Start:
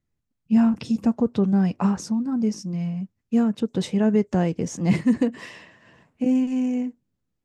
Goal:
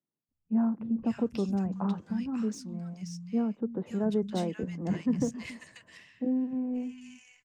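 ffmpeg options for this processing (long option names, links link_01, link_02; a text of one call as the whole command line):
ffmpeg -i in.wav -filter_complex "[0:a]asettb=1/sr,asplit=3[link_01][link_02][link_03];[link_01]atrim=end=5.434[link_04];[link_02]atrim=start=5.43:end=6.44,asetpts=PTS-STARTPTS,afade=type=in:duration=0.004:curve=qsin,afade=type=out:start_time=1.006:duration=0.004:curve=qsin,highshelf=frequency=2500:gain=-10[link_05];[link_03]atrim=start=6.436[link_06];[link_04][link_05]acrossfade=duration=0.004:curve1=hsin:curve2=qsin[link_07];[link_07][link_06]acrossfade=duration=0.004:curve1=qsin:curve2=hsin,acrossover=split=110|3600[link_08][link_09][link_10];[link_10]asoftclip=type=tanh:threshold=-32dB[link_11];[link_08][link_09][link_11]amix=inputs=3:normalize=0,acrossover=split=160|1500[link_12][link_13][link_14];[link_12]adelay=280[link_15];[link_14]adelay=540[link_16];[link_15][link_13][link_16]amix=inputs=3:normalize=0,volume=-7dB" out.wav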